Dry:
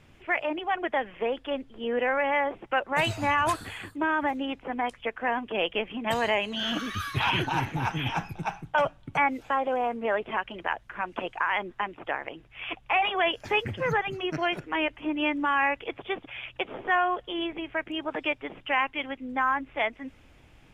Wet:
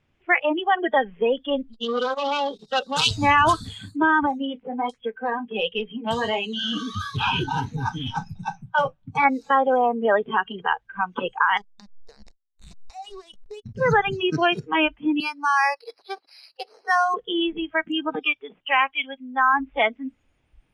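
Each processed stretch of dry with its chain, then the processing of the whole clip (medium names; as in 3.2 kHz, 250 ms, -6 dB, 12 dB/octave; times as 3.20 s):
1.73–3.11 s: resonant high shelf 2.9 kHz +12 dB, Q 3 + transformer saturation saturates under 3.7 kHz
4.26–9.25 s: flange 1.4 Hz, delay 6.6 ms, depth 8.3 ms, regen -41% + transformer saturation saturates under 490 Hz
11.57–13.76 s: hysteresis with a dead band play -25 dBFS + compression 5:1, threshold -41 dBFS
15.20–17.14 s: high-pass 690 Hz + distance through air 200 m + decimation joined by straight lines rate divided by 6×
18.19–19.54 s: bass shelf 370 Hz -11.5 dB + tape noise reduction on one side only decoder only
whole clip: low-pass 6.6 kHz 12 dB/octave; spectral noise reduction 21 dB; trim +8 dB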